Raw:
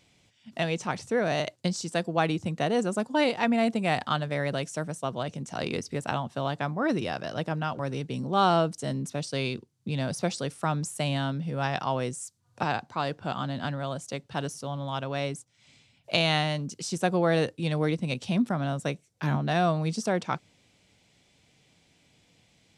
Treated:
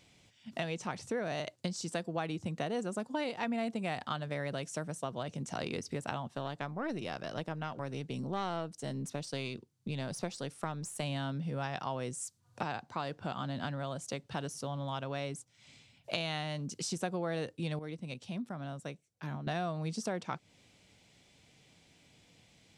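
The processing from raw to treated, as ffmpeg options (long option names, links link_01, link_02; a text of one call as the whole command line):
ffmpeg -i in.wav -filter_complex "[0:a]asettb=1/sr,asplit=3[link_01][link_02][link_03];[link_01]atrim=end=6.284[link_04];[link_02]atrim=start=6.28:end=11.03,asetpts=PTS-STARTPTS,afade=type=in:duration=0.004:curve=qsin,afade=type=out:start_time=4.746:duration=0.004:curve=qsin,aeval=exprs='(tanh(5.01*val(0)+0.65)-tanh(0.65))/5.01':channel_layout=same[link_05];[link_03]atrim=start=11.026[link_06];[link_04][link_05]acrossfade=duration=0.004:curve1=hsin:curve2=qsin[link_07];[link_07][link_06]acrossfade=duration=0.004:curve1=qsin:curve2=hsin,asplit=3[link_08][link_09][link_10];[link_08]atrim=end=17.792[link_11];[link_09]atrim=start=17.788:end=19.472,asetpts=PTS-STARTPTS,volume=-11.5dB[link_12];[link_10]atrim=start=19.468[link_13];[link_11][link_12]acrossfade=duration=0.004:curve1=hsin:curve2=hsin[link_14];[link_14][link_13]acrossfade=duration=0.004:curve1=hsin:curve2=hsin,acompressor=threshold=-35dB:ratio=3" out.wav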